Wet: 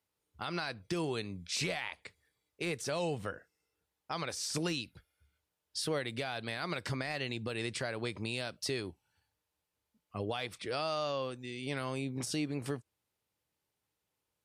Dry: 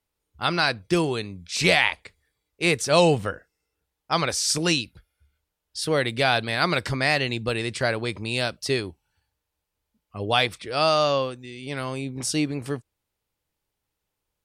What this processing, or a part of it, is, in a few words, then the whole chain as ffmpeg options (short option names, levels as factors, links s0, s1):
podcast mastering chain: -af "highpass=88,deesser=0.55,acompressor=threshold=0.0316:ratio=2.5,alimiter=limit=0.0841:level=0:latency=1:release=109,volume=0.75" -ar 32000 -c:a libmp3lame -b:a 96k